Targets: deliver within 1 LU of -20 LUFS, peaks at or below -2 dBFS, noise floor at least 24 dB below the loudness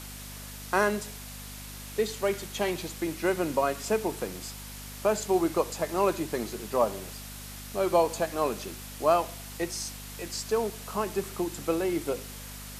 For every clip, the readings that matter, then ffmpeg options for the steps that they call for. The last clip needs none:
hum 50 Hz; harmonics up to 250 Hz; hum level -42 dBFS; noise floor -42 dBFS; noise floor target -54 dBFS; loudness -29.5 LUFS; peak -10.5 dBFS; loudness target -20.0 LUFS
-> -af "bandreject=f=50:t=h:w=4,bandreject=f=100:t=h:w=4,bandreject=f=150:t=h:w=4,bandreject=f=200:t=h:w=4,bandreject=f=250:t=h:w=4"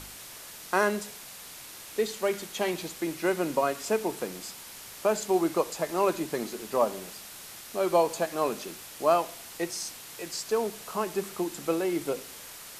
hum none; noise floor -45 dBFS; noise floor target -54 dBFS
-> -af "afftdn=nr=9:nf=-45"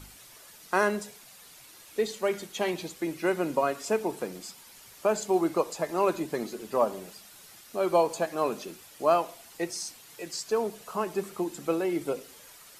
noise floor -52 dBFS; noise floor target -54 dBFS
-> -af "afftdn=nr=6:nf=-52"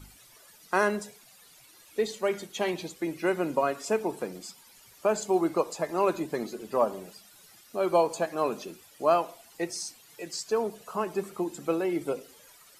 noise floor -56 dBFS; loudness -29.5 LUFS; peak -10.5 dBFS; loudness target -20.0 LUFS
-> -af "volume=9.5dB,alimiter=limit=-2dB:level=0:latency=1"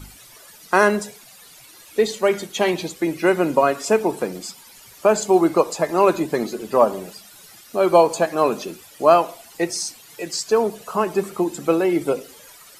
loudness -20.0 LUFS; peak -2.0 dBFS; noise floor -46 dBFS

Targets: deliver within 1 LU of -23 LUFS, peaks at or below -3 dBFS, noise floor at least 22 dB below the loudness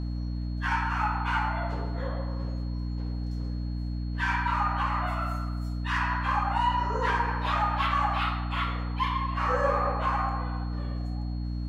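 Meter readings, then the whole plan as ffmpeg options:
hum 60 Hz; harmonics up to 300 Hz; hum level -29 dBFS; steady tone 4300 Hz; tone level -54 dBFS; loudness -29.0 LUFS; peak -13.5 dBFS; loudness target -23.0 LUFS
-> -af "bandreject=f=60:t=h:w=6,bandreject=f=120:t=h:w=6,bandreject=f=180:t=h:w=6,bandreject=f=240:t=h:w=6,bandreject=f=300:t=h:w=6"
-af "bandreject=f=4.3k:w=30"
-af "volume=6dB"

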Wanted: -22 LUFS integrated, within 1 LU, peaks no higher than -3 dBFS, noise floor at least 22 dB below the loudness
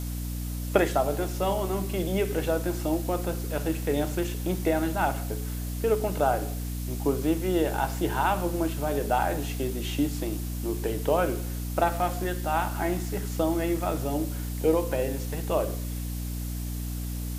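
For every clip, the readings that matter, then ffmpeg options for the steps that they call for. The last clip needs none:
hum 60 Hz; harmonics up to 300 Hz; hum level -30 dBFS; noise floor -32 dBFS; noise floor target -51 dBFS; loudness -28.5 LUFS; peak -6.0 dBFS; loudness target -22.0 LUFS
-> -af "bandreject=f=60:t=h:w=6,bandreject=f=120:t=h:w=6,bandreject=f=180:t=h:w=6,bandreject=f=240:t=h:w=6,bandreject=f=300:t=h:w=6"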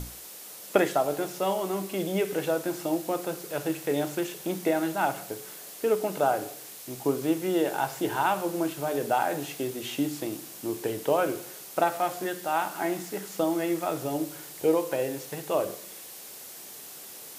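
hum none; noise floor -44 dBFS; noise floor target -51 dBFS
-> -af "afftdn=nr=7:nf=-44"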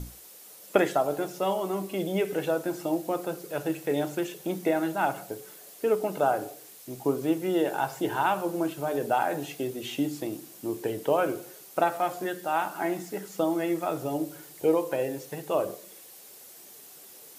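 noise floor -49 dBFS; noise floor target -51 dBFS
-> -af "afftdn=nr=6:nf=-49"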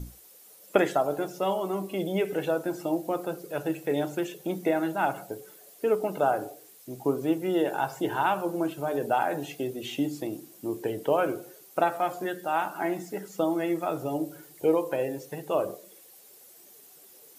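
noise floor -53 dBFS; loudness -29.0 LUFS; peak -7.0 dBFS; loudness target -22.0 LUFS
-> -af "volume=7dB,alimiter=limit=-3dB:level=0:latency=1"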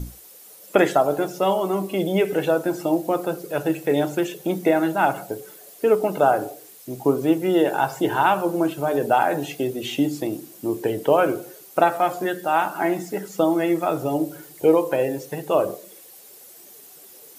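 loudness -22.0 LUFS; peak -3.0 dBFS; noise floor -46 dBFS

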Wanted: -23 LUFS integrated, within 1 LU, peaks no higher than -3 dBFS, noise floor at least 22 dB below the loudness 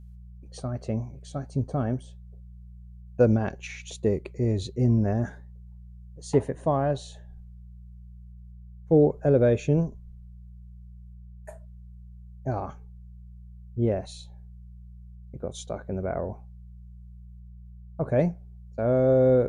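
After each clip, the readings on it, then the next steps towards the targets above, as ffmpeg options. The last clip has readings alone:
hum 60 Hz; harmonics up to 180 Hz; hum level -43 dBFS; loudness -26.5 LUFS; peak -9.0 dBFS; loudness target -23.0 LUFS
-> -af "bandreject=f=60:t=h:w=4,bandreject=f=120:t=h:w=4,bandreject=f=180:t=h:w=4"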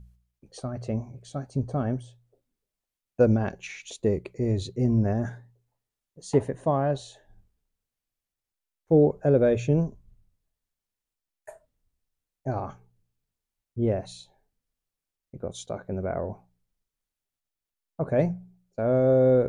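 hum none; loudness -26.5 LUFS; peak -9.0 dBFS; loudness target -23.0 LUFS
-> -af "volume=3.5dB"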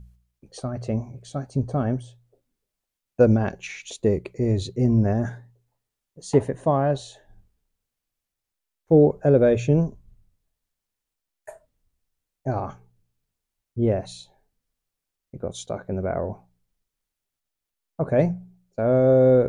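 loudness -23.0 LUFS; peak -5.5 dBFS; noise floor -85 dBFS

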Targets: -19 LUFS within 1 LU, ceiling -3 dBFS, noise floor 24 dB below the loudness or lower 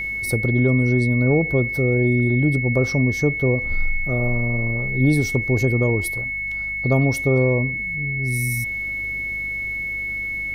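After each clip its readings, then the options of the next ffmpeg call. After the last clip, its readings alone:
hum 50 Hz; harmonics up to 200 Hz; hum level -37 dBFS; steady tone 2200 Hz; tone level -24 dBFS; loudness -20.5 LUFS; peak -7.5 dBFS; loudness target -19.0 LUFS
-> -af "bandreject=f=50:t=h:w=4,bandreject=f=100:t=h:w=4,bandreject=f=150:t=h:w=4,bandreject=f=200:t=h:w=4"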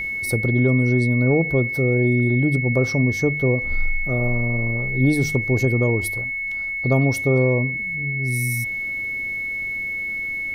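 hum none; steady tone 2200 Hz; tone level -24 dBFS
-> -af "bandreject=f=2.2k:w=30"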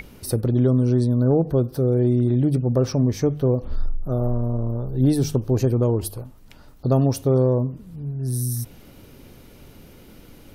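steady tone none; loudness -21.5 LUFS; peak -9.0 dBFS; loudness target -19.0 LUFS
-> -af "volume=2.5dB"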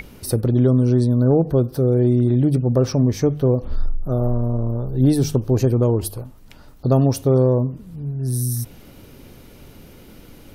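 loudness -19.0 LUFS; peak -6.5 dBFS; noise floor -45 dBFS

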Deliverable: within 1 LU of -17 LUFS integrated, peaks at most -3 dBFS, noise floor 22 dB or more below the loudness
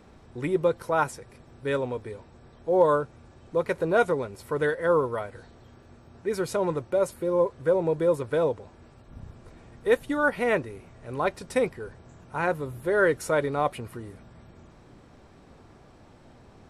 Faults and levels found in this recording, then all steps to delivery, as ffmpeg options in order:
loudness -26.5 LUFS; peak -8.5 dBFS; loudness target -17.0 LUFS
-> -af "volume=9.5dB,alimiter=limit=-3dB:level=0:latency=1"

